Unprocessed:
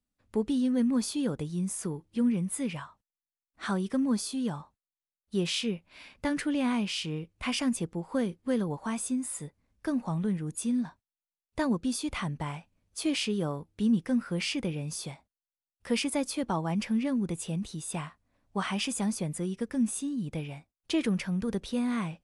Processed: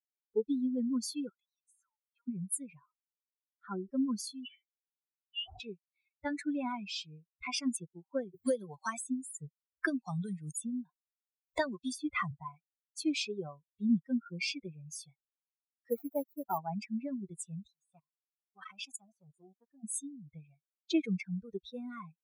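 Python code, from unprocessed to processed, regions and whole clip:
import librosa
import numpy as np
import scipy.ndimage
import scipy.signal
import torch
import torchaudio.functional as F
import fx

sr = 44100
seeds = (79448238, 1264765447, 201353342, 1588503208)

y = fx.chain(x, sr, fx.highpass(hz=860.0, slope=24),
    fx.high_shelf(hz=3100.0, db=-10.0),
    fx.band_squash(depth_pct=70), at=(1.29, 2.28))
y = fx.chain(y, sr, fx.lowpass(hz=1200.0, slope=6),
    fx.sustainer(db_per_s=110.0), at=(2.79, 3.9))
y = fx.chain(y, sr, fx.highpass(hz=180.0, slope=24),
    fx.peak_eq(hz=570.0, db=-11.0, octaves=1.3),
    fx.freq_invert(carrier_hz=3200), at=(4.45, 5.6))
y = fx.chain(y, sr, fx.peak_eq(hz=530.0, db=3.5, octaves=0.42),
    fx.band_squash(depth_pct=100), at=(8.34, 12.31))
y = fx.chain(y, sr, fx.median_filter(points=15),
    fx.peak_eq(hz=3300.0, db=-12.5, octaves=0.65),
    fx.resample_bad(factor=4, down='none', up='hold'), at=(15.9, 16.58))
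y = fx.chain(y, sr, fx.level_steps(step_db=17),
    fx.transformer_sat(knee_hz=550.0), at=(17.67, 19.84))
y = fx.bin_expand(y, sr, power=3.0)
y = fx.highpass(y, sr, hz=290.0, slope=6)
y = fx.notch(y, sr, hz=3000.0, q=7.8)
y = y * 10.0 ** (4.5 / 20.0)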